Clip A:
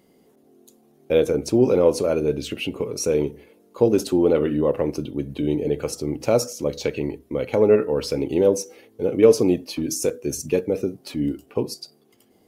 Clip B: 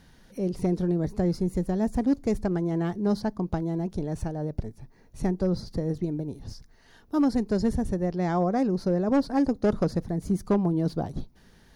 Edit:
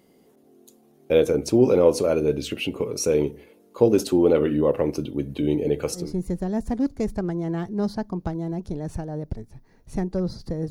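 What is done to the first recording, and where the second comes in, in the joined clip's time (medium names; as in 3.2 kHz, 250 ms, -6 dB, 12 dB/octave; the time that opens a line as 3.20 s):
clip A
6.04 s: go over to clip B from 1.31 s, crossfade 0.22 s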